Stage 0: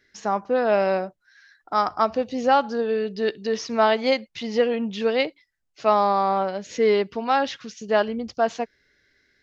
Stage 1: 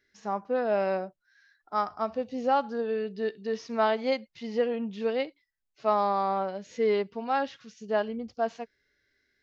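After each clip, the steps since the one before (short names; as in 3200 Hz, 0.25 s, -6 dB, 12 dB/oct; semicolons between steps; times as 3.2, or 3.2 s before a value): harmonic-percussive split percussive -10 dB; gain -6 dB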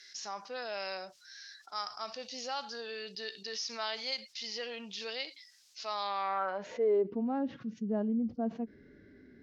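low shelf 71 Hz +10.5 dB; band-pass sweep 5200 Hz -> 230 Hz, 5.89–7.26; fast leveller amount 50%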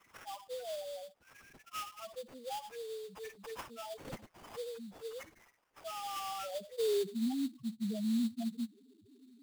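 limiter -27 dBFS, peak gain reduction 5.5 dB; loudest bins only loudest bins 2; sample-rate reducer 4100 Hz, jitter 20%; gain +1.5 dB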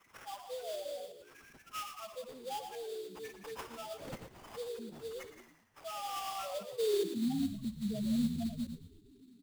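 reverse delay 0.102 s, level -9 dB; frequency-shifting echo 0.115 s, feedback 47%, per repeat -71 Hz, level -12 dB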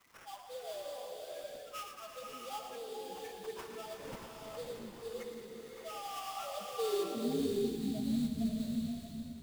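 crackle 220/s -49 dBFS; flange 1.2 Hz, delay 2.8 ms, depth 5.6 ms, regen -73%; bloom reverb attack 0.65 s, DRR 1 dB; gain +1.5 dB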